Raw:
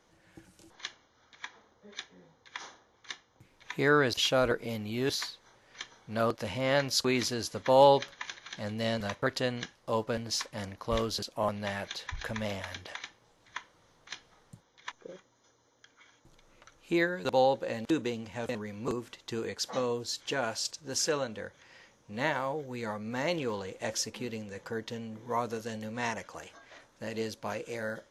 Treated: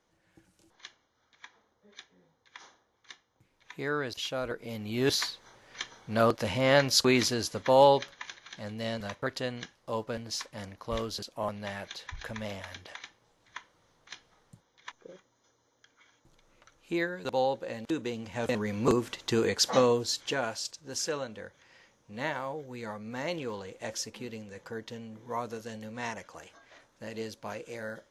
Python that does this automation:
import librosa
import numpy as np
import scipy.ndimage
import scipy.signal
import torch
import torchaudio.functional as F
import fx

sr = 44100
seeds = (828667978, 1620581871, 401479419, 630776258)

y = fx.gain(x, sr, db=fx.line((4.48, -7.5), (5.1, 4.5), (7.13, 4.5), (8.39, -3.0), (17.97, -3.0), (18.74, 8.5), (19.79, 8.5), (20.67, -3.0)))